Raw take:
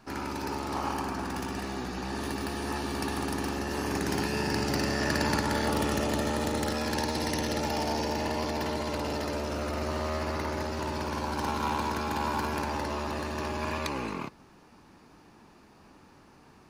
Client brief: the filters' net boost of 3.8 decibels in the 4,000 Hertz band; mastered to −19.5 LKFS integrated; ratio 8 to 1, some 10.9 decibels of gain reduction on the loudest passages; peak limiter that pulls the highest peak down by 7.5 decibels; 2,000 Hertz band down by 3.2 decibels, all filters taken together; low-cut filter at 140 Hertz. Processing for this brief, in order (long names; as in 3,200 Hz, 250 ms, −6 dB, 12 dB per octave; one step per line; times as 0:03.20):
high-pass filter 140 Hz
parametric band 2,000 Hz −5.5 dB
parametric band 4,000 Hz +6 dB
downward compressor 8 to 1, threshold −36 dBFS
level +21 dB
brickwall limiter −9.5 dBFS